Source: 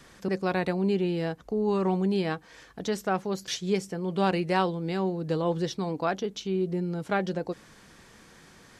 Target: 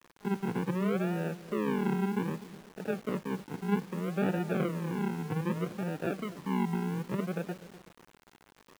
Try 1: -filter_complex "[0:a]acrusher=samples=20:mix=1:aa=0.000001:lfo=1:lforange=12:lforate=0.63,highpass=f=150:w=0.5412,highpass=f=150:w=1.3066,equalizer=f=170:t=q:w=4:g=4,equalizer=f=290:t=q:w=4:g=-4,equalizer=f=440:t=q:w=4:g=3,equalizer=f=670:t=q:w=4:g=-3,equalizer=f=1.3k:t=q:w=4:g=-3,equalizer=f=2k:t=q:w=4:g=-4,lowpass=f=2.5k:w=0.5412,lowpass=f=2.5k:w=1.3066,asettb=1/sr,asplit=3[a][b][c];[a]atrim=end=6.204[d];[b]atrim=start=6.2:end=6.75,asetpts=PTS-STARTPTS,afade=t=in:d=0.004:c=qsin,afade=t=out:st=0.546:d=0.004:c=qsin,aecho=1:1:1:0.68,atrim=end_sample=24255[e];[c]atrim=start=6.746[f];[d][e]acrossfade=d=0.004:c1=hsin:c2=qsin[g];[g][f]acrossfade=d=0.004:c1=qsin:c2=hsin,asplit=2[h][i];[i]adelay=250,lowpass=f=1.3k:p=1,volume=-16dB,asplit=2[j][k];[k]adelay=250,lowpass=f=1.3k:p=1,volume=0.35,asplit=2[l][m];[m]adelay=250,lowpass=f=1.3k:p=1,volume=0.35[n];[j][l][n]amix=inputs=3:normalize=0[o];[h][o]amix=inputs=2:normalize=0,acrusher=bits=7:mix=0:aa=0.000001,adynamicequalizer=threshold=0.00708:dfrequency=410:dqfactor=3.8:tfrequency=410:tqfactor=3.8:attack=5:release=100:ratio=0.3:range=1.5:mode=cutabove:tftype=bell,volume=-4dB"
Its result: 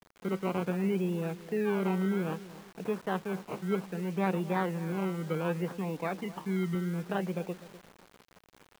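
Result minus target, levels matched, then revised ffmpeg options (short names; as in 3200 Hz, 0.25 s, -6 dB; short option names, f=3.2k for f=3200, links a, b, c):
decimation with a swept rate: distortion -14 dB
-filter_complex "[0:a]acrusher=samples=58:mix=1:aa=0.000001:lfo=1:lforange=34.8:lforate=0.63,highpass=f=150:w=0.5412,highpass=f=150:w=1.3066,equalizer=f=170:t=q:w=4:g=4,equalizer=f=290:t=q:w=4:g=-4,equalizer=f=440:t=q:w=4:g=3,equalizer=f=670:t=q:w=4:g=-3,equalizer=f=1.3k:t=q:w=4:g=-3,equalizer=f=2k:t=q:w=4:g=-4,lowpass=f=2.5k:w=0.5412,lowpass=f=2.5k:w=1.3066,asettb=1/sr,asplit=3[a][b][c];[a]atrim=end=6.204[d];[b]atrim=start=6.2:end=6.75,asetpts=PTS-STARTPTS,afade=t=in:d=0.004:c=qsin,afade=t=out:st=0.546:d=0.004:c=qsin,aecho=1:1:1:0.68,atrim=end_sample=24255[e];[c]atrim=start=6.746[f];[d][e]acrossfade=d=0.004:c1=hsin:c2=qsin[g];[g][f]acrossfade=d=0.004:c1=qsin:c2=hsin,asplit=2[h][i];[i]adelay=250,lowpass=f=1.3k:p=1,volume=-16dB,asplit=2[j][k];[k]adelay=250,lowpass=f=1.3k:p=1,volume=0.35,asplit=2[l][m];[m]adelay=250,lowpass=f=1.3k:p=1,volume=0.35[n];[j][l][n]amix=inputs=3:normalize=0[o];[h][o]amix=inputs=2:normalize=0,acrusher=bits=7:mix=0:aa=0.000001,adynamicequalizer=threshold=0.00708:dfrequency=410:dqfactor=3.8:tfrequency=410:tqfactor=3.8:attack=5:release=100:ratio=0.3:range=1.5:mode=cutabove:tftype=bell,volume=-4dB"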